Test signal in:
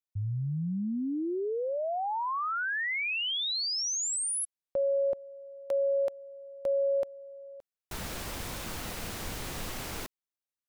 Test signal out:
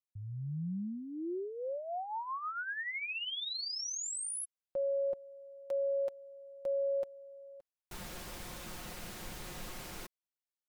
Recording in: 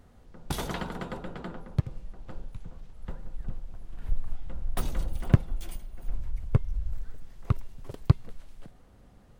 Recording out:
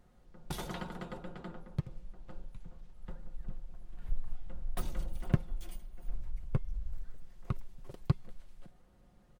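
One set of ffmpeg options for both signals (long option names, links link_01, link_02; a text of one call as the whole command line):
ffmpeg -i in.wav -af "aecho=1:1:5.6:0.42,volume=-8dB" out.wav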